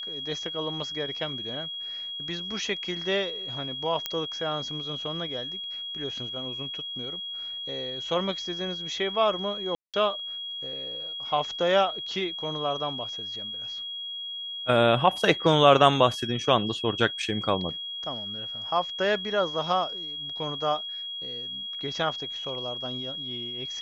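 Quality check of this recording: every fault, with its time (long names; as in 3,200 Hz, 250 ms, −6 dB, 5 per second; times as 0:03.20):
whistle 3,300 Hz −33 dBFS
0:04.06: click −12 dBFS
0:09.75–0:09.94: drop-out 187 ms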